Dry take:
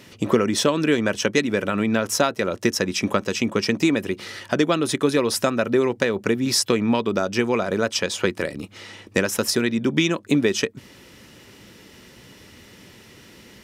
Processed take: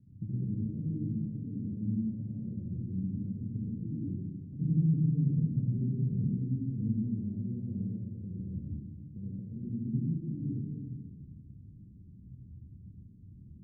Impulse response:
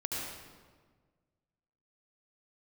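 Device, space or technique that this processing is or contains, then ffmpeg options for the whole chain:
club heard from the street: -filter_complex "[0:a]alimiter=limit=0.168:level=0:latency=1:release=142,lowpass=f=170:w=0.5412,lowpass=f=170:w=1.3066[s0];[1:a]atrim=start_sample=2205[s1];[s0][s1]afir=irnorm=-1:irlink=0,asettb=1/sr,asplit=3[s2][s3][s4];[s2]atrim=end=4.604[s5];[s3]atrim=start=4.6:end=6.37,asetpts=PTS-STARTPTS,afade=t=in:d=0.004:c=qsin,afade=t=out:st=1.766:d=0.004:c=qsin,equalizer=f=160:w=2.7:g=14[s6];[s4]atrim=start=6.366[s7];[s5][s6]acrossfade=d=0.004:c1=hsin:c2=qsin[s8];[s8][s7]acrossfade=d=0.004:c1=qsin:c2=hsin,volume=0.841"

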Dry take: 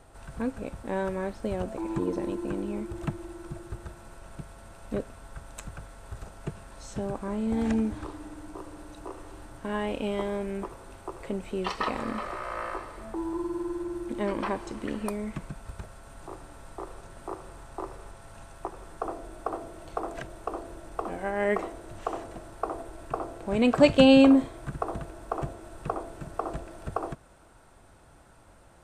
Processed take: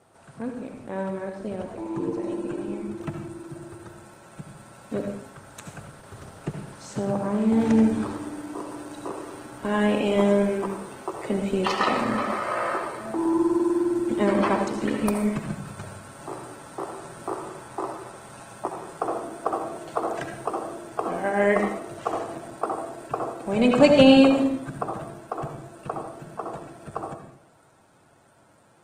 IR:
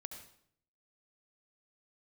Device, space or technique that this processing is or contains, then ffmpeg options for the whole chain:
far-field microphone of a smart speaker: -filter_complex "[0:a]asplit=3[s0][s1][s2];[s0]afade=t=out:st=2.52:d=0.02[s3];[s1]equalizer=f=180:w=3.3:g=-2.5,afade=t=in:st=2.52:d=0.02,afade=t=out:st=4.01:d=0.02[s4];[s2]afade=t=in:st=4.01:d=0.02[s5];[s3][s4][s5]amix=inputs=3:normalize=0[s6];[1:a]atrim=start_sample=2205[s7];[s6][s7]afir=irnorm=-1:irlink=0,highpass=f=110:w=0.5412,highpass=f=110:w=1.3066,dynaudnorm=f=350:g=31:m=2.51,volume=1.5" -ar 48000 -c:a libopus -b:a 16k

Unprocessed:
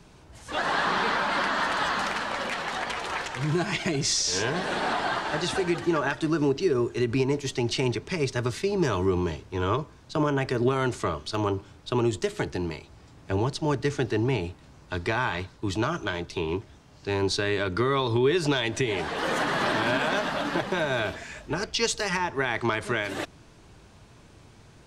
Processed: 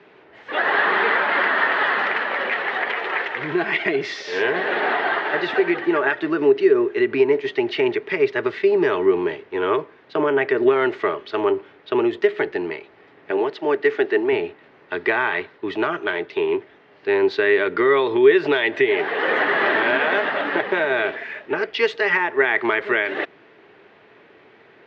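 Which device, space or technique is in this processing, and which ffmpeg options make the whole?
phone earpiece: -filter_complex "[0:a]highpass=360,equalizer=f=410:t=q:w=4:g=8,equalizer=f=1000:t=q:w=4:g=-3,equalizer=f=1900:t=q:w=4:g=8,lowpass=f=3100:w=0.5412,lowpass=f=3100:w=1.3066,asettb=1/sr,asplit=3[s0][s1][s2];[s0]atrim=end=13.314[s3];[s1]atrim=start=13.31:end=14.33,asetpts=PTS-STARTPTS,afade=t=in:d=0.004:c=qsin,afade=t=out:st=1.016:d=0.004:c=qsin,highpass=230[s4];[s2]atrim=start=14.326[s5];[s3][s4]acrossfade=d=0.004:c1=hsin:c2=qsin[s6];[s6][s5]acrossfade=d=0.004:c1=qsin:c2=hsin,volume=1.88"

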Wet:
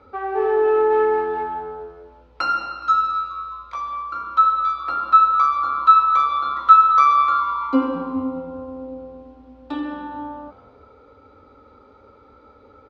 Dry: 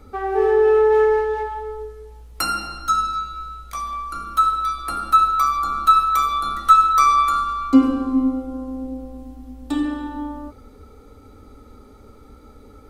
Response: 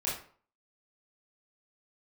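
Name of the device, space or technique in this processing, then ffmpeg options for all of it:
frequency-shifting delay pedal into a guitar cabinet: -filter_complex "[0:a]asplit=5[s0][s1][s2][s3][s4];[s1]adelay=209,afreqshift=-90,volume=0.112[s5];[s2]adelay=418,afreqshift=-180,volume=0.0582[s6];[s3]adelay=627,afreqshift=-270,volume=0.0302[s7];[s4]adelay=836,afreqshift=-360,volume=0.0158[s8];[s0][s5][s6][s7][s8]amix=inputs=5:normalize=0,highpass=85,equalizer=f=140:t=q:w=4:g=-6,equalizer=f=210:t=q:w=4:g=-6,equalizer=f=540:t=q:w=4:g=9,equalizer=f=950:t=q:w=4:g=9,equalizer=f=1400:t=q:w=4:g=7,equalizer=f=2500:t=q:w=4:g=4,lowpass=f=4500:w=0.5412,lowpass=f=4500:w=1.3066,volume=0.562"

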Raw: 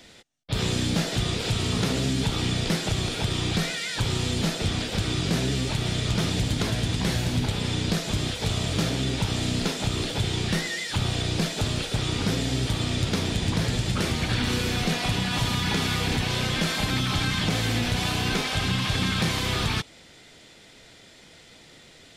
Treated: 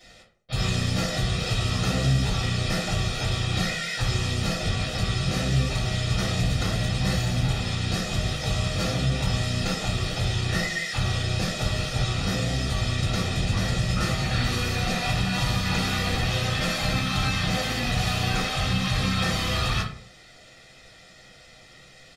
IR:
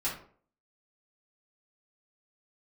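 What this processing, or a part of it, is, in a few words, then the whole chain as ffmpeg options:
microphone above a desk: -filter_complex "[0:a]aecho=1:1:1.6:0.56[s0];[1:a]atrim=start_sample=2205[s1];[s0][s1]afir=irnorm=-1:irlink=0,volume=0.531"

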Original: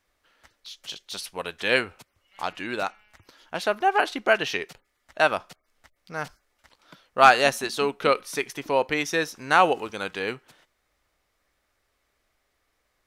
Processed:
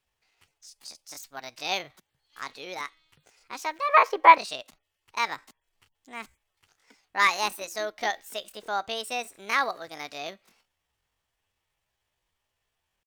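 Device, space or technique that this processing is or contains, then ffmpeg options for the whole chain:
chipmunk voice: -filter_complex "[0:a]asetrate=66075,aresample=44100,atempo=0.66742,asettb=1/sr,asplit=3[s0][s1][s2];[s0]atrim=end=3.894[s3];[s1]atrim=start=3.89:end=4.38,asetpts=PTS-STARTPTS,afade=t=in:d=0.004:c=qsin,afade=t=out:st=0.486:d=0.004:c=qsin,equalizer=f=125:t=o:w=1:g=-11,equalizer=f=250:t=o:w=1:g=9,equalizer=f=500:t=o:w=1:g=9,equalizer=f=1000:t=o:w=1:g=12,equalizer=f=2000:t=o:w=1:g=8,equalizer=f=4000:t=o:w=1:g=-3,equalizer=f=8000:t=o:w=1:g=-7[s4];[s2]atrim=start=4.376[s5];[s3][s4]acrossfade=d=0.004:c1=hsin:c2=qsin[s6];[s6][s5]acrossfade=d=0.004:c1=qsin:c2=hsin,volume=0.447"

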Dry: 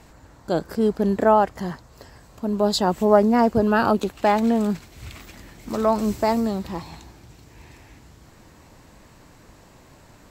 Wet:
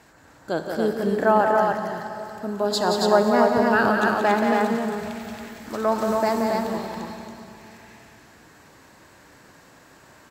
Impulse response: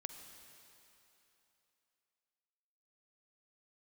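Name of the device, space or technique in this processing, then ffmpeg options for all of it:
stadium PA: -filter_complex "[0:a]highpass=f=220:p=1,equalizer=f=1600:t=o:w=0.4:g=7,aecho=1:1:177.8|277:0.501|0.708[s0];[1:a]atrim=start_sample=2205[s1];[s0][s1]afir=irnorm=-1:irlink=0,volume=1.19"

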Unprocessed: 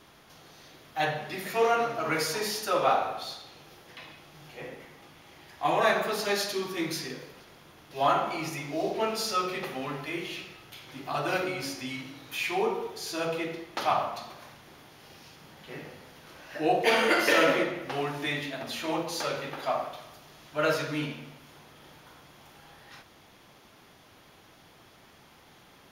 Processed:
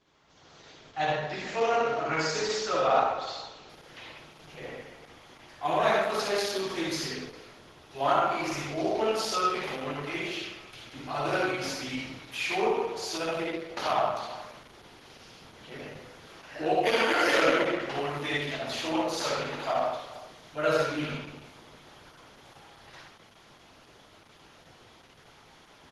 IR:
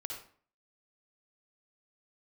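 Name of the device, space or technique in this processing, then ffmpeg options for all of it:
speakerphone in a meeting room: -filter_complex "[0:a]asplit=3[s0][s1][s2];[s0]afade=t=out:st=7.98:d=0.02[s3];[s1]adynamicequalizer=threshold=0.00447:dfrequency=100:dqfactor=0.73:tfrequency=100:tqfactor=0.73:attack=5:release=100:ratio=0.375:range=2.5:mode=cutabove:tftype=bell,afade=t=in:st=7.98:d=0.02,afade=t=out:st=8.49:d=0.02[s4];[s2]afade=t=in:st=8.49:d=0.02[s5];[s3][s4][s5]amix=inputs=3:normalize=0,asplit=2[s6][s7];[s7]adelay=71,lowpass=f=3700:p=1,volume=0.299,asplit=2[s8][s9];[s9]adelay=71,lowpass=f=3700:p=1,volume=0.15[s10];[s6][s8][s10]amix=inputs=3:normalize=0[s11];[1:a]atrim=start_sample=2205[s12];[s11][s12]afir=irnorm=-1:irlink=0,asplit=2[s13][s14];[s14]adelay=370,highpass=300,lowpass=3400,asoftclip=type=hard:threshold=0.0944,volume=0.112[s15];[s13][s15]amix=inputs=2:normalize=0,dynaudnorm=f=170:g=5:m=3.55,volume=0.376" -ar 48000 -c:a libopus -b:a 12k

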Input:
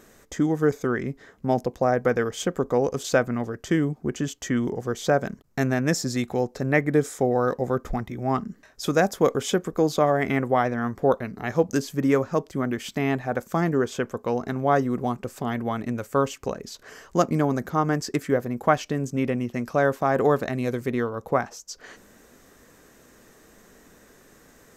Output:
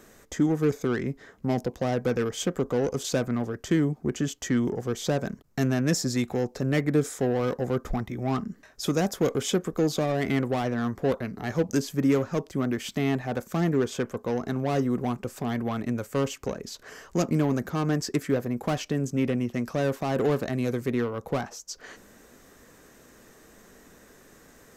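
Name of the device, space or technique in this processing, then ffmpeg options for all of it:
one-band saturation: -filter_complex "[0:a]acrossover=split=400|3000[s0][s1][s2];[s1]asoftclip=type=tanh:threshold=0.0355[s3];[s0][s3][s2]amix=inputs=3:normalize=0"

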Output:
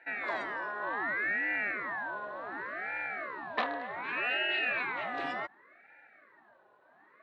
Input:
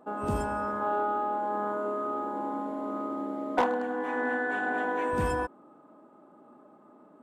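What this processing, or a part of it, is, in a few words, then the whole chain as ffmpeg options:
voice changer toy: -af "aeval=exprs='val(0)*sin(2*PI*670*n/s+670*0.7/0.67*sin(2*PI*0.67*n/s))':c=same,highpass=440,equalizer=f=480:t=q:w=4:g=-8,equalizer=f=840:t=q:w=4:g=-4,equalizer=f=1300:t=q:w=4:g=-6,equalizer=f=1800:t=q:w=4:g=6,equalizer=f=2600:t=q:w=4:g=5,equalizer=f=4000:t=q:w=4:g=10,lowpass=f=4600:w=0.5412,lowpass=f=4600:w=1.3066"

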